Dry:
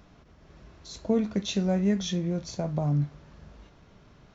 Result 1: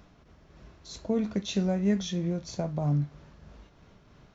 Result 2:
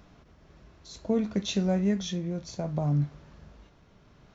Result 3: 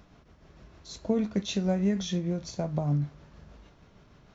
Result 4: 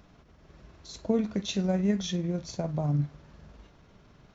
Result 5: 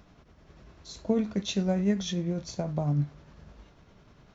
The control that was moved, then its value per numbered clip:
amplitude tremolo, speed: 3.1, 0.65, 6.5, 20, 10 Hertz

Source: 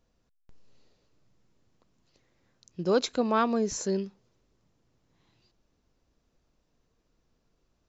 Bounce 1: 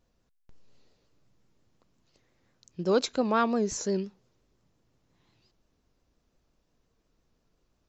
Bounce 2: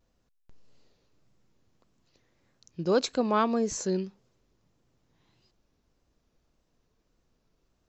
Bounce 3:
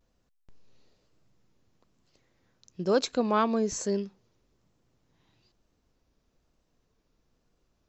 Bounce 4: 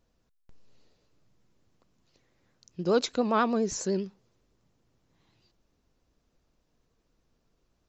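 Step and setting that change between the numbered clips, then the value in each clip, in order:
pitch vibrato, speed: 5.7, 1.7, 1.1, 10 Hertz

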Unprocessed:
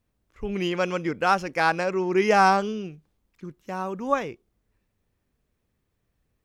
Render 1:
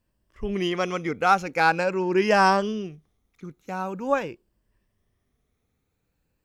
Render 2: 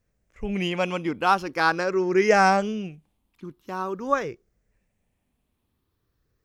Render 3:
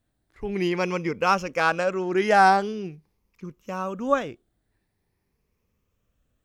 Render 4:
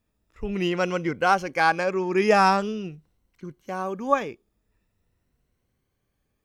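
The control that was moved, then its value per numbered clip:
rippled gain that drifts along the octave scale, ripples per octave: 1.3, 0.55, 0.82, 2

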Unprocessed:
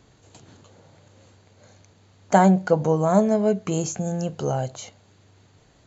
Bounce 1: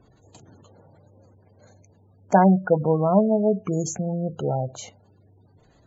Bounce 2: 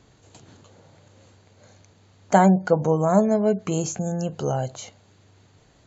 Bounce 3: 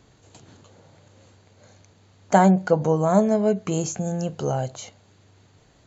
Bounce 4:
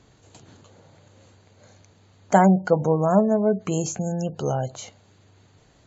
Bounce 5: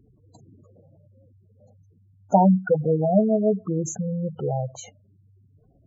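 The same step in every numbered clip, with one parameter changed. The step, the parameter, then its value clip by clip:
gate on every frequency bin, under each frame's peak: −20, −45, −60, −35, −10 decibels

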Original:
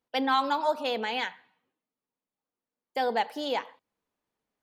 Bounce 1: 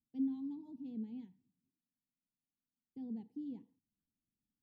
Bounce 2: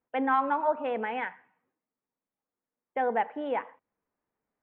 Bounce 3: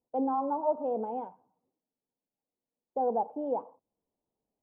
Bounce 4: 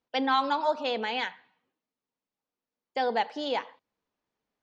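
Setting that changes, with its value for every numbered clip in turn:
inverse Chebyshev low-pass filter, stop band from: 530, 4,300, 1,700, 11,000 Hertz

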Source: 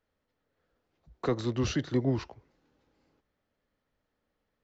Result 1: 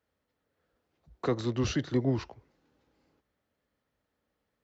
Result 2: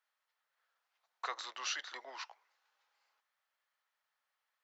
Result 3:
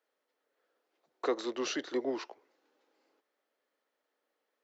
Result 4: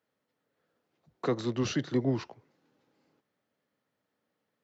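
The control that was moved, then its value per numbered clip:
high-pass filter, corner frequency: 43, 880, 340, 120 Hertz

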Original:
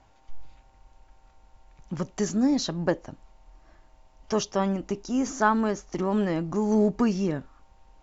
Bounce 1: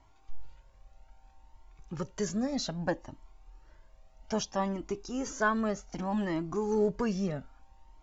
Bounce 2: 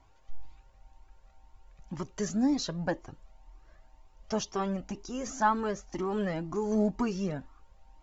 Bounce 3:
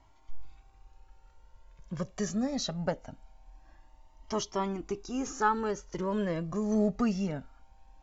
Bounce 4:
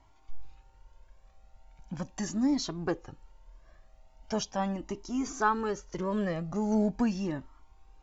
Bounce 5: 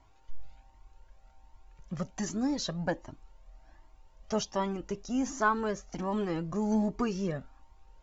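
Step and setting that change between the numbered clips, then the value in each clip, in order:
flanger whose copies keep moving one way, speed: 0.63, 2, 0.23, 0.4, 1.3 Hertz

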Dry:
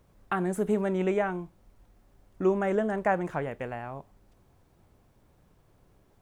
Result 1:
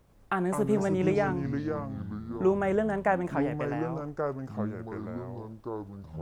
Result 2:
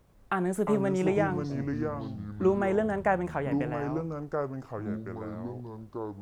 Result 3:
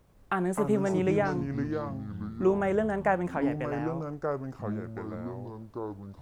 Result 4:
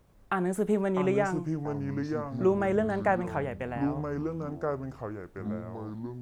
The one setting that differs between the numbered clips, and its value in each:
delay with pitch and tempo change per echo, delay time: 104, 249, 153, 545 milliseconds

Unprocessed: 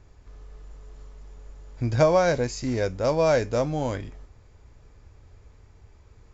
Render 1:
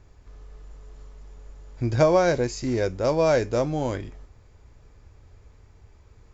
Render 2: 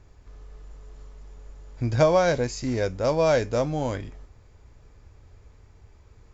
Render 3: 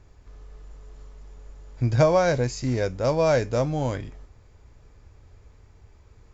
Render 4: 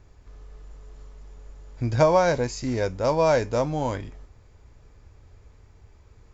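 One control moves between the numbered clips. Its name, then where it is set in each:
dynamic equaliser, frequency: 360, 3,300, 130, 940 Hertz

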